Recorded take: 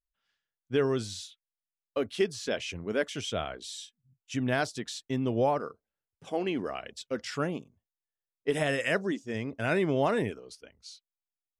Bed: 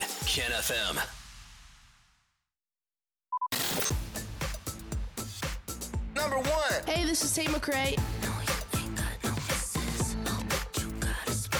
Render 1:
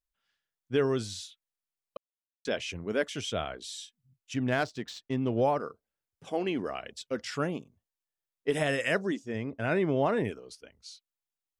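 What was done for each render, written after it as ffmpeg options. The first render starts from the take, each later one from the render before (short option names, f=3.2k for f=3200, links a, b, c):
-filter_complex "[0:a]asplit=3[a][b][c];[a]afade=t=out:st=4.33:d=0.02[d];[b]adynamicsmooth=sensitivity=6:basefreq=3.3k,afade=t=in:st=4.33:d=0.02,afade=t=out:st=5.4:d=0.02[e];[c]afade=t=in:st=5.4:d=0.02[f];[d][e][f]amix=inputs=3:normalize=0,asettb=1/sr,asplit=3[g][h][i];[g]atrim=end=9.284[j];[h]atrim=start=9.28:end=10.25,asetpts=PTS-STARTPTS,afade=t=in:d=0.004:c=qsin,afade=t=out:st=0.966:d=0.004:c=qsin,highshelf=f=4.1k:g=-12[k];[i]atrim=start=10.246[l];[j][k]acrossfade=d=0.004:c1=hsin:c2=qsin[m];[m][l]acrossfade=d=0.004:c1=qsin:c2=hsin,asplit=3[n][o][p];[n]atrim=end=1.97,asetpts=PTS-STARTPTS,afade=t=out:st=1.966:d=0.004:c=hsin[q];[o]atrim=start=1.97:end=2.45,asetpts=PTS-STARTPTS,volume=0[r];[p]atrim=start=2.45,asetpts=PTS-STARTPTS,afade=t=in:d=0.004:c=hsin[s];[q][r][s]concat=n=3:v=0:a=1"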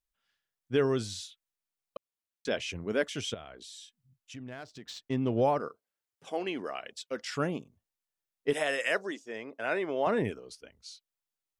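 -filter_complex "[0:a]asettb=1/sr,asplit=3[a][b][c];[a]atrim=end=3.344[d];[b]atrim=start=3.34:end=4.89,asetpts=PTS-STARTPTS,afade=t=in:d=0.004:c=qsin,afade=t=out:st=1.546:d=0.004:c=qsin,acompressor=threshold=-47dB:ratio=2.5:attack=3.2:release=140:knee=1:detection=peak[e];[c]atrim=start=4.886[f];[d][e]acrossfade=d=0.004:c1=hsin:c2=qsin[g];[g][f]acrossfade=d=0.004:c1=qsin:c2=hsin,asettb=1/sr,asplit=3[h][i][j];[h]atrim=end=5.684[k];[i]atrim=start=5.68:end=7.37,asetpts=PTS-STARTPTS,afade=t=in:d=0.004:c=qsin,afade=t=out:st=1.686:d=0.004:c=qsin,highpass=f=440:p=1[l];[j]atrim=start=7.366[m];[k][l]acrossfade=d=0.004:c1=hsin:c2=qsin[n];[n][m]acrossfade=d=0.004:c1=qsin:c2=hsin,asettb=1/sr,asplit=3[o][p][q];[o]atrim=end=8.534[r];[p]atrim=start=8.53:end=10.07,asetpts=PTS-STARTPTS,afade=t=in:d=0.004:c=qsin,afade=t=out:st=1.536:d=0.004:c=qsin,highpass=450[s];[q]atrim=start=10.066[t];[r][s]acrossfade=d=0.004:c1=hsin:c2=qsin[u];[u][t]acrossfade=d=0.004:c1=qsin:c2=hsin"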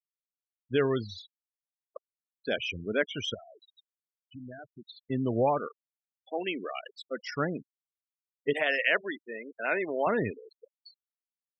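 -af "afftfilt=real='re*gte(hypot(re,im),0.0224)':imag='im*gte(hypot(re,im),0.0224)':win_size=1024:overlap=0.75,adynamicequalizer=threshold=0.00447:dfrequency=2300:dqfactor=0.94:tfrequency=2300:tqfactor=0.94:attack=5:release=100:ratio=0.375:range=3:mode=boostabove:tftype=bell"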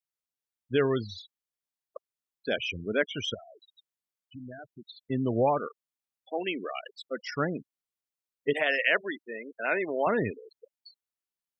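-af "volume=1dB"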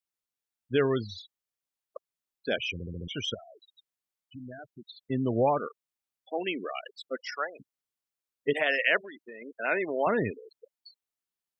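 -filter_complex "[0:a]asplit=3[a][b][c];[a]afade=t=out:st=7.15:d=0.02[d];[b]highpass=f=580:w=0.5412,highpass=f=580:w=1.3066,afade=t=in:st=7.15:d=0.02,afade=t=out:st=7.59:d=0.02[e];[c]afade=t=in:st=7.59:d=0.02[f];[d][e][f]amix=inputs=3:normalize=0,asettb=1/sr,asplit=3[g][h][i];[g]atrim=end=8.974[j];[h]atrim=start=8.97:end=9.42,asetpts=PTS-STARTPTS,afade=t=in:d=0.004:c=qsin,afade=t=out:st=0.446:d=0.004:c=qsin,acompressor=threshold=-40dB:ratio=10:attack=3.2:release=140:knee=1:detection=peak[k];[i]atrim=start=9.416[l];[j][k]acrossfade=d=0.004:c1=hsin:c2=qsin[m];[m][l]acrossfade=d=0.004:c1=qsin:c2=hsin,asplit=6[n][o][p][q][r][s];[n]atrim=end=2.802[t];[o]atrim=start=2.728:end=2.802[u];[p]atrim=start=2.728:end=2.802[v];[q]atrim=start=2.728:end=2.802[w];[r]atrim=start=2.728:end=2.802[x];[s]atrim=start=3.078[y];[t][u]acrossfade=d=0.004:c1=hsin:c2=hsin[z];[z][v]acrossfade=d=0.004:c1=hsin:c2=hsin[aa];[aa][w]acrossfade=d=0.004:c1=hsin:c2=hsin[ab];[ab][x]acrossfade=d=0.004:c1=hsin:c2=hsin[ac];[ac][y]acrossfade=d=0.004:c1=hsin:c2=hsin"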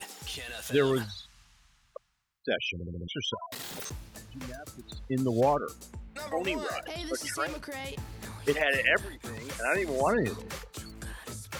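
-filter_complex "[1:a]volume=-9.5dB[a];[0:a][a]amix=inputs=2:normalize=0"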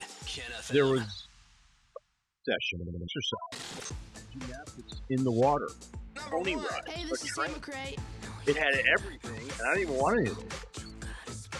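-af "lowpass=f=8.8k:w=0.5412,lowpass=f=8.8k:w=1.3066,bandreject=f=600:w=12"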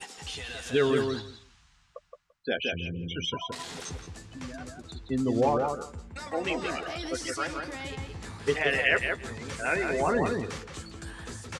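-filter_complex "[0:a]asplit=2[a][b];[b]adelay=12,volume=-9dB[c];[a][c]amix=inputs=2:normalize=0,asplit=2[d][e];[e]adelay=170,lowpass=f=2.7k:p=1,volume=-4dB,asplit=2[f][g];[g]adelay=170,lowpass=f=2.7k:p=1,volume=0.15,asplit=2[h][i];[i]adelay=170,lowpass=f=2.7k:p=1,volume=0.15[j];[d][f][h][j]amix=inputs=4:normalize=0"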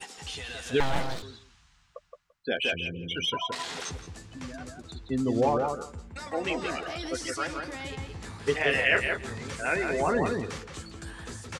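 -filter_complex "[0:a]asettb=1/sr,asplit=3[a][b][c];[a]atrim=end=0.804[d];[b]atrim=start=0.8:end=1.23,asetpts=PTS-STARTPTS,afade=t=in:d=0.004:c=qsin,afade=t=out:st=0.426:d=0.004:c=qsin,aeval=exprs='abs(val(0))':c=same[e];[c]atrim=start=1.226[f];[d][e]acrossfade=d=0.004:c1=hsin:c2=qsin[g];[g][f]acrossfade=d=0.004:c1=qsin:c2=hsin,asplit=3[h][i][j];[h]afade=t=out:st=2.56:d=0.02[k];[i]asplit=2[l][m];[m]highpass=f=720:p=1,volume=11dB,asoftclip=type=tanh:threshold=-16.5dB[n];[l][n]amix=inputs=2:normalize=0,lowpass=f=4.4k:p=1,volume=-6dB,afade=t=in:st=2.56:d=0.02,afade=t=out:st=3.9:d=0.02[o];[j]afade=t=in:st=3.9:d=0.02[p];[k][o][p]amix=inputs=3:normalize=0,asettb=1/sr,asplit=3[q][r][s];[q]atrim=end=8.574[t];[r]atrim=start=8.57:end=9.48,asetpts=PTS-STARTPTS,afade=t=in:d=0.004:c=qsin,afade=t=out:st=0.906:d=0.004:c=qsin,asplit=2[u][v];[v]adelay=28,volume=-5dB[w];[u][w]amix=inputs=2:normalize=0,atrim=end_sample=40131[x];[s]atrim=start=9.476[y];[t][x]acrossfade=d=0.004:c1=hsin:c2=qsin[z];[z][y]acrossfade=d=0.004:c1=qsin:c2=hsin"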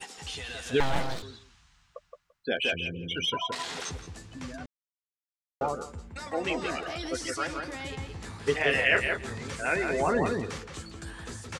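-filter_complex "[0:a]asplit=3[a][b][c];[a]atrim=end=4.66,asetpts=PTS-STARTPTS,afade=t=out:st=4.656:d=0.004:c=hsin[d];[b]atrim=start=4.66:end=5.61,asetpts=PTS-STARTPTS,volume=0[e];[c]atrim=start=5.61,asetpts=PTS-STARTPTS,afade=t=in:d=0.004:c=hsin[f];[d][e][f]concat=n=3:v=0:a=1"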